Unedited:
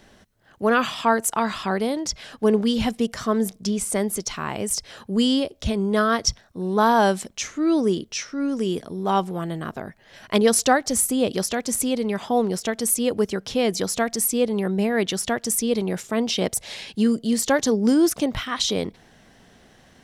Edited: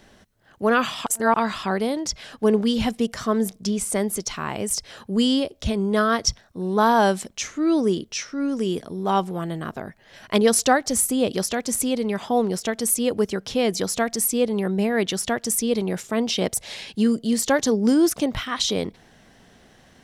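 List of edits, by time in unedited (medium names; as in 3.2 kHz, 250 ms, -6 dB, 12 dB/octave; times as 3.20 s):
1.06–1.34 s: reverse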